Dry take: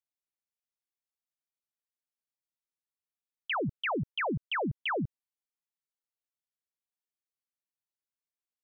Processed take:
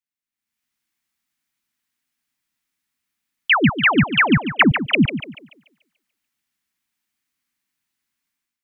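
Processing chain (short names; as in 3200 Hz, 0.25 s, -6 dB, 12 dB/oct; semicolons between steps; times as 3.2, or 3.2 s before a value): ten-band EQ 250 Hz +9 dB, 500 Hz -12 dB, 2000 Hz +6 dB; AGC gain up to 15 dB; 4.5–4.95 dispersion highs, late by 87 ms, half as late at 1100 Hz; on a send: thinning echo 0.145 s, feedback 41%, high-pass 200 Hz, level -8.5 dB; on the sum: gain -1 dB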